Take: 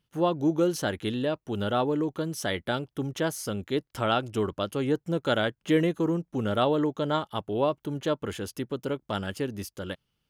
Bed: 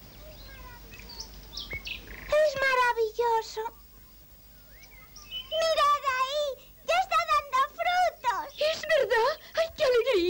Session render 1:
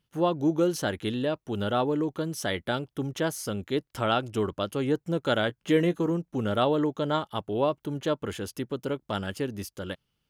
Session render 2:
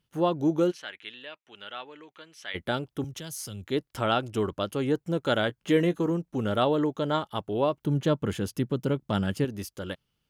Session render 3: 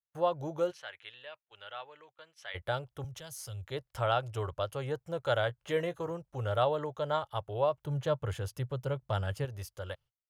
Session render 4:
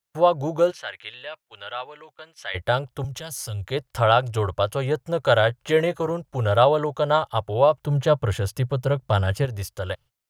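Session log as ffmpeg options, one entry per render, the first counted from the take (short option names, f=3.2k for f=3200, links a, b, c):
-filter_complex "[0:a]asettb=1/sr,asplit=3[a][b][c];[a]atrim=end=5.474[d];[b]atrim=start=5.47:end=6.11,asetpts=PTS-STARTPTS,afade=t=in:d=0.004:c=qsin,afade=t=out:st=0.636:d=0.004:c=qsin,asplit=2[e][f];[f]adelay=17,volume=-12dB[g];[e][g]amix=inputs=2:normalize=0,atrim=end_sample=28224[h];[c]atrim=start=6.106[i];[d][h]acrossfade=d=0.004:c1=hsin:c2=qsin[j];[j][i]acrossfade=d=0.004:c1=qsin:c2=hsin"
-filter_complex "[0:a]asplit=3[a][b][c];[a]afade=t=out:st=0.7:d=0.02[d];[b]bandpass=f=2.4k:t=q:w=1.9,afade=t=in:st=0.7:d=0.02,afade=t=out:st=2.54:d=0.02[e];[c]afade=t=in:st=2.54:d=0.02[f];[d][e][f]amix=inputs=3:normalize=0,asettb=1/sr,asplit=3[g][h][i];[g]atrim=end=3.044[j];[h]atrim=start=3.04:end=3.65,asetpts=PTS-STARTPTS,afade=t=in:d=0.004:c=qsin,afade=t=out:st=0.606:d=0.004:c=qsin,acrossover=split=140|3000[k][l][m];[l]acompressor=threshold=-50dB:ratio=2.5:attack=3.2:release=140:knee=2.83:detection=peak[n];[k][n][m]amix=inputs=3:normalize=0[o];[i]atrim=start=3.646[p];[j][o]acrossfade=d=0.004:c1=hsin:c2=qsin[q];[q][p]acrossfade=d=0.004:c1=qsin:c2=hsin,asettb=1/sr,asplit=3[r][s][t];[r]atrim=end=7.834[u];[s]atrim=start=7.83:end=9.45,asetpts=PTS-STARTPTS,afade=t=in:d=0.004:c=qsin,afade=t=out:st=1.616:d=0.004:c=qsin,equalizer=f=150:t=o:w=1.6:g=9.5[v];[t]atrim=start=9.446[w];[u][v]acrossfade=d=0.004:c1=hsin:c2=qsin[x];[x][w]acrossfade=d=0.004:c1=qsin:c2=hsin"
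-af "agate=range=-31dB:threshold=-52dB:ratio=16:detection=peak,firequalizer=gain_entry='entry(120,0);entry(210,-25);entry(530,-2);entry(2400,-7)':delay=0.05:min_phase=1"
-af "volume=11.5dB"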